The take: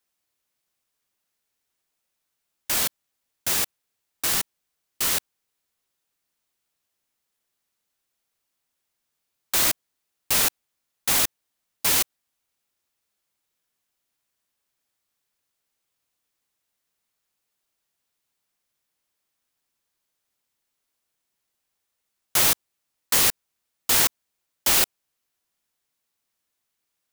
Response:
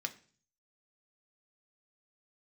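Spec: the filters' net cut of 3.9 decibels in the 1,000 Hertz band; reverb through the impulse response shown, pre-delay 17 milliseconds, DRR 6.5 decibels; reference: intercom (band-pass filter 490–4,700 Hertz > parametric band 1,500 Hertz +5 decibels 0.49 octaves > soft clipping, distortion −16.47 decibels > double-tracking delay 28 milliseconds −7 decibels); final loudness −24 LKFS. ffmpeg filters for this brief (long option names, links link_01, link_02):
-filter_complex "[0:a]equalizer=frequency=1000:width_type=o:gain=-7,asplit=2[link_01][link_02];[1:a]atrim=start_sample=2205,adelay=17[link_03];[link_02][link_03]afir=irnorm=-1:irlink=0,volume=-7dB[link_04];[link_01][link_04]amix=inputs=2:normalize=0,highpass=490,lowpass=4700,equalizer=frequency=1500:width_type=o:width=0.49:gain=5,asoftclip=threshold=-20.5dB,asplit=2[link_05][link_06];[link_06]adelay=28,volume=-7dB[link_07];[link_05][link_07]amix=inputs=2:normalize=0,volume=5.5dB"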